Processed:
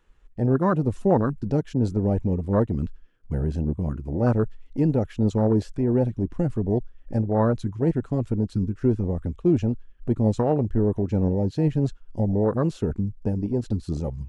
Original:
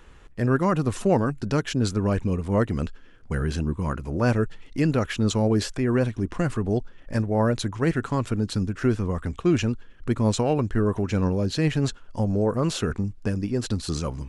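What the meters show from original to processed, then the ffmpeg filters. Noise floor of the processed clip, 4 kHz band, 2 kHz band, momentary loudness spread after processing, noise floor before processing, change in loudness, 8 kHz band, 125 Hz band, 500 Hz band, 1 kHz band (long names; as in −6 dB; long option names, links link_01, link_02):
−51 dBFS, below −15 dB, −10.0 dB, 6 LU, −48 dBFS, +0.5 dB, below −15 dB, +1.0 dB, +0.5 dB, −1.5 dB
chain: -af "afwtdn=0.0631,volume=1dB"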